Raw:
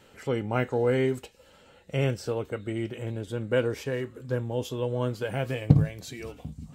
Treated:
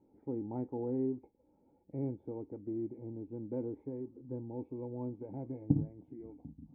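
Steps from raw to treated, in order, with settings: nonlinear frequency compression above 1600 Hz 1.5:1; vocal tract filter u

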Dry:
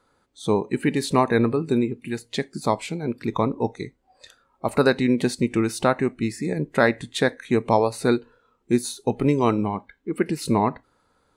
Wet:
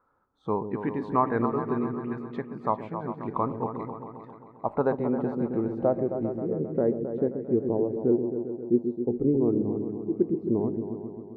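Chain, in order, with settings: low-pass sweep 1200 Hz -> 380 Hz, 3.96–7.2; repeats that get brighter 0.133 s, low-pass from 400 Hz, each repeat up 2 oct, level -6 dB; gain -8.5 dB

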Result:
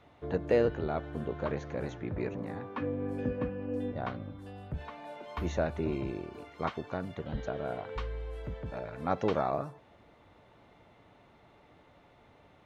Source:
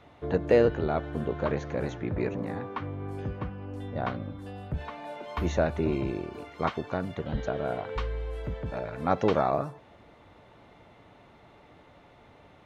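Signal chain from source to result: 2.77–3.92 small resonant body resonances 260/500/1700/2500 Hz, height 16 dB, ringing for 65 ms; gain -5 dB

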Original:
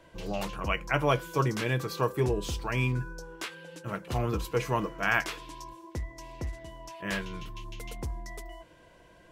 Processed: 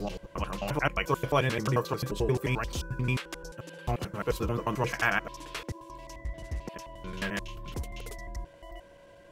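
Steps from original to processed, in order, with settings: slices in reverse order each 88 ms, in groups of 4; whine 560 Hz -54 dBFS

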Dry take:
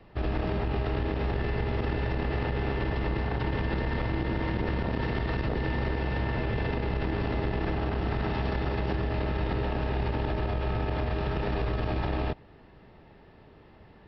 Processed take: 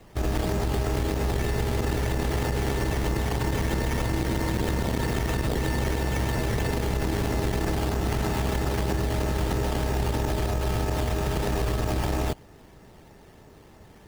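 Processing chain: decimation with a swept rate 9×, swing 60% 3.1 Hz; gain +3 dB

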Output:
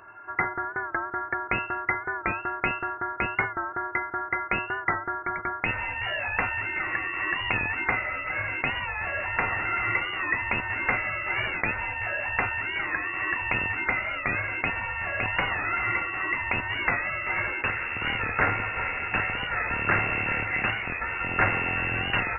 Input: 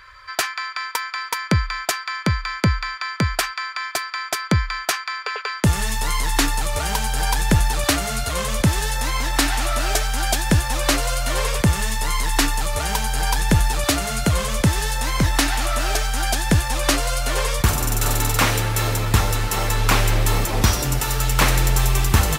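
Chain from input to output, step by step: rattling part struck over -16 dBFS, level -13 dBFS; resonant low shelf 400 Hz -11 dB, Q 1.5; resonator 650 Hz, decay 0.32 s, mix 80%; inverted band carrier 2700 Hz; record warp 45 rpm, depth 100 cents; gain +8.5 dB

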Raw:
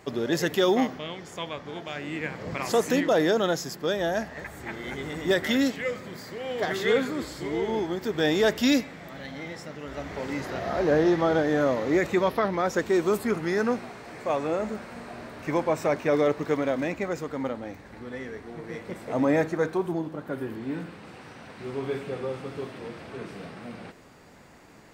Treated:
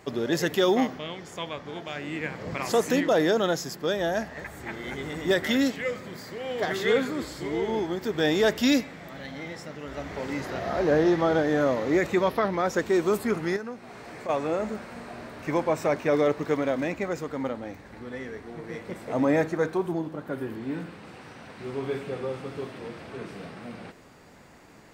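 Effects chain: 13.56–14.29 compressor 6:1, threshold -34 dBFS, peak gain reduction 12.5 dB

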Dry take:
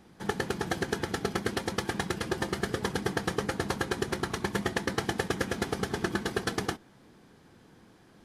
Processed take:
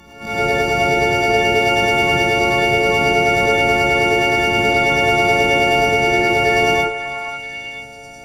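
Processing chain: frequency quantiser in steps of 4 st; low shelf 130 Hz +9 dB; notches 50/100/150/200/250/300/350 Hz; transient shaper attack -8 dB, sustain +5 dB; in parallel at +1 dB: limiter -26.5 dBFS, peak gain reduction 10 dB; on the sum: formant shift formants +5 st; on a send: delay with a stepping band-pass 0.49 s, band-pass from 1100 Hz, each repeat 1.4 oct, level -5.5 dB; on the sum: non-linear reverb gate 0.14 s rising, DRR -6 dB; gain +2.5 dB

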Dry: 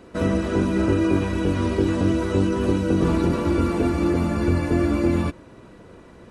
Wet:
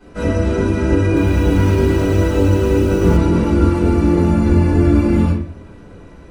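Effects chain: shoebox room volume 49 m³, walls mixed, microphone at 3.1 m; 1.06–3.17 lo-fi delay 0.106 s, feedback 80%, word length 5-bit, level -6 dB; gain -10 dB

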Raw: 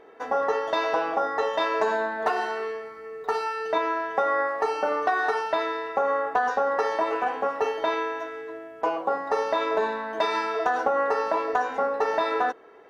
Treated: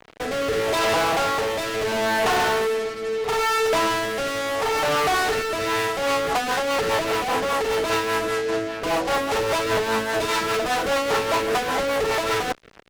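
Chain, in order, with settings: fuzz box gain 41 dB, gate -45 dBFS; rotary speaker horn 0.75 Hz, later 5 Hz, at 5.38; gain -5.5 dB

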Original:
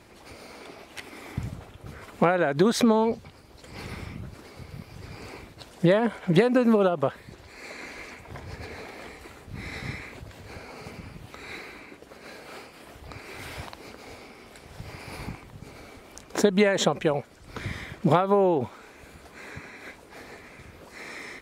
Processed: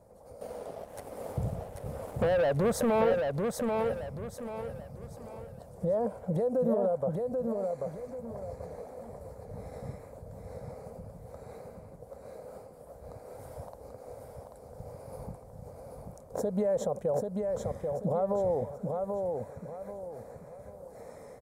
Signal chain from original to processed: EQ curve 190 Hz 0 dB, 350 Hz -11 dB, 510 Hz +10 dB, 2700 Hz -27 dB, 9600 Hz -3 dB; limiter -17 dBFS, peak gain reduction 11.5 dB; 0.41–3.21 sample leveller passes 2; feedback echo 0.787 s, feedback 34%, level -4 dB; gain -5 dB

